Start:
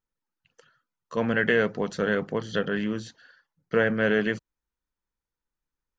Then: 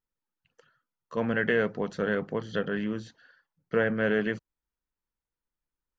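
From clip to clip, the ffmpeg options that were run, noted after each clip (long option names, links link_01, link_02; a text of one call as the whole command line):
ffmpeg -i in.wav -af "highshelf=frequency=4200:gain=-9,volume=-2.5dB" out.wav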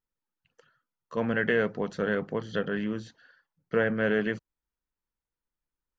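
ffmpeg -i in.wav -af anull out.wav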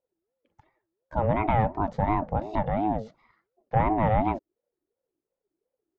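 ffmpeg -i in.wav -af "tiltshelf=frequency=1100:gain=9,aeval=exprs='val(0)*sin(2*PI*430*n/s+430*0.25/2.8*sin(2*PI*2.8*n/s))':channel_layout=same" out.wav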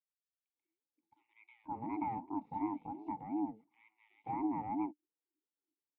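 ffmpeg -i in.wav -filter_complex "[0:a]asplit=3[link_01][link_02][link_03];[link_01]bandpass=frequency=300:width_type=q:width=8,volume=0dB[link_04];[link_02]bandpass=frequency=870:width_type=q:width=8,volume=-6dB[link_05];[link_03]bandpass=frequency=2240:width_type=q:width=8,volume=-9dB[link_06];[link_04][link_05][link_06]amix=inputs=3:normalize=0,acrossover=split=2600[link_07][link_08];[link_07]adelay=530[link_09];[link_09][link_08]amix=inputs=2:normalize=0,volume=-3dB" out.wav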